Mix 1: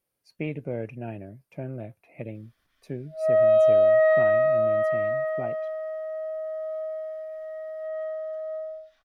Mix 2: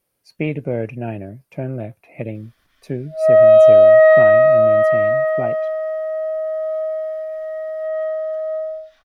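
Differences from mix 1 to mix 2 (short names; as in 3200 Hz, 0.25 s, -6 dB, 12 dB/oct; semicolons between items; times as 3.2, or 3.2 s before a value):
speech +9.0 dB; background +9.5 dB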